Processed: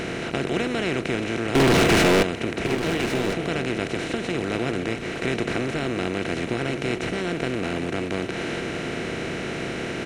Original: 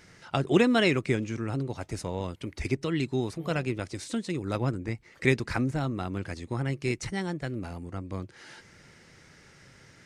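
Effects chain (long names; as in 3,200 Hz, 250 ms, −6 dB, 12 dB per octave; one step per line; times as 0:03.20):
compressor on every frequency bin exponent 0.2
0:01.55–0:02.23: leveller curve on the samples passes 5
on a send: single-tap delay 1,106 ms −11 dB
on the sum: level −8.5 dB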